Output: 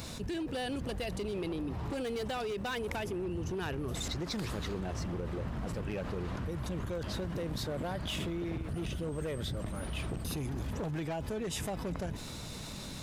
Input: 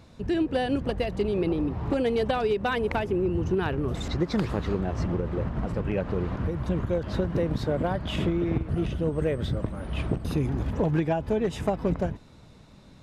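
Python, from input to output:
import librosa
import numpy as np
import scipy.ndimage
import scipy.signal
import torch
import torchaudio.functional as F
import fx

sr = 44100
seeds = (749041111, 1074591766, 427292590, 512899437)

y = F.preemphasis(torch.from_numpy(x), 0.8).numpy()
y = np.clip(10.0 ** (35.0 / 20.0) * y, -1.0, 1.0) / 10.0 ** (35.0 / 20.0)
y = fx.env_flatten(y, sr, amount_pct=70)
y = y * librosa.db_to_amplitude(2.5)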